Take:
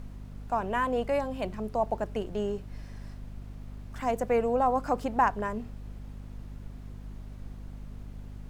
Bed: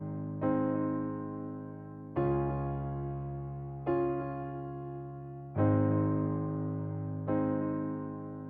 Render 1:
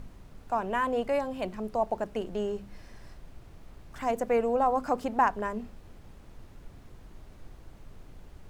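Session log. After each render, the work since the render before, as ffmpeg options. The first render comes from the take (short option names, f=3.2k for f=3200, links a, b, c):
-af "bandreject=f=50:t=h:w=4,bandreject=f=100:t=h:w=4,bandreject=f=150:t=h:w=4,bandreject=f=200:t=h:w=4,bandreject=f=250:t=h:w=4"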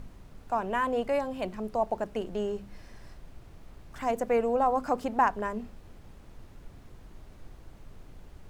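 -af anull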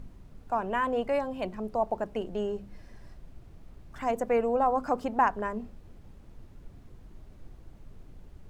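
-af "afftdn=nr=6:nf=-52"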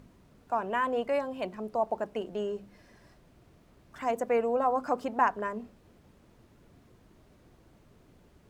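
-af "highpass=f=230:p=1,bandreject=f=810:w=18"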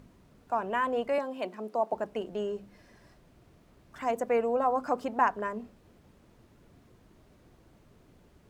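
-filter_complex "[0:a]asettb=1/sr,asplit=3[a][b][c];[a]atrim=end=1.184[d];[b]atrim=start=1.18:end=1.93,asetpts=PTS-STARTPTS,afade=t=in:d=0.004:c=qsin,afade=t=out:st=0.746:d=0.004:c=qsin,highpass=f=210:w=0.5412,highpass=f=210:w=1.3066[e];[c]atrim=start=1.926[f];[d][e]acrossfade=d=0.004:c1=hsin:c2=qsin[g];[g][f]acrossfade=d=0.004:c1=qsin:c2=hsin"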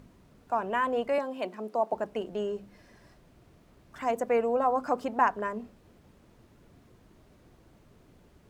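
-af "volume=1dB"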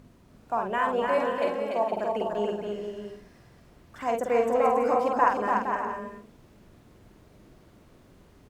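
-filter_complex "[0:a]asplit=2[a][b];[b]adelay=48,volume=-4dB[c];[a][c]amix=inputs=2:normalize=0,aecho=1:1:290|464|568.4|631|668.6:0.631|0.398|0.251|0.158|0.1"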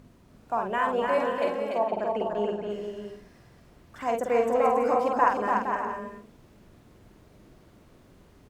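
-filter_complex "[0:a]asettb=1/sr,asplit=3[a][b][c];[a]atrim=end=1.784[d];[b]atrim=start=1.78:end=2.7,asetpts=PTS-STARTPTS,afade=t=in:d=0.004:c=qsin,afade=t=out:st=0.916:d=0.004:c=qsin,aemphasis=mode=reproduction:type=cd[e];[c]atrim=start=2.696[f];[d][e]acrossfade=d=0.004:c1=hsin:c2=qsin[g];[g][f]acrossfade=d=0.004:c1=qsin:c2=hsin"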